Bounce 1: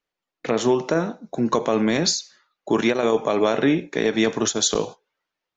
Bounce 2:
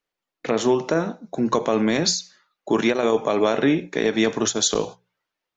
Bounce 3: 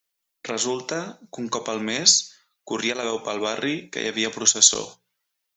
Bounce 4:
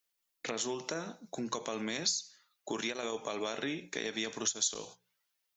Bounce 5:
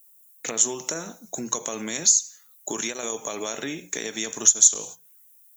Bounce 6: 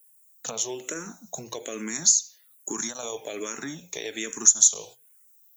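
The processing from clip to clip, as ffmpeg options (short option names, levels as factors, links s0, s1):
-af "bandreject=f=60:t=h:w=6,bandreject=f=120:t=h:w=6,bandreject=f=180:t=h:w=6"
-af "crystalizer=i=7:c=0,volume=0.376"
-af "acompressor=threshold=0.0224:ratio=2.5,volume=0.708"
-af "aexciter=amount=11.1:drive=6.1:freq=6900,volume=1.68"
-filter_complex "[0:a]asplit=2[s0][s1];[s1]afreqshift=-1.2[s2];[s0][s2]amix=inputs=2:normalize=1"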